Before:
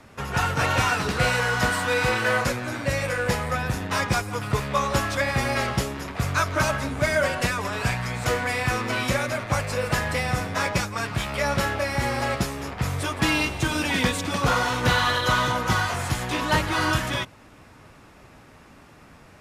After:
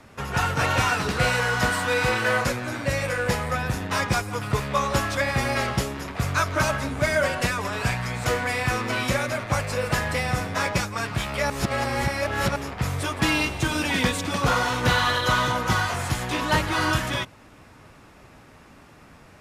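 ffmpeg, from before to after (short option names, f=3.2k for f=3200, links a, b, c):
-filter_complex "[0:a]asplit=3[a][b][c];[a]atrim=end=11.502[d];[b]atrim=start=11.498:end=12.562,asetpts=PTS-STARTPTS,areverse[e];[c]atrim=start=12.558[f];[d][e]acrossfade=d=0.004:c1=hsin:c2=hsin[g];[g][f]acrossfade=d=0.004:c1=hsin:c2=hsin"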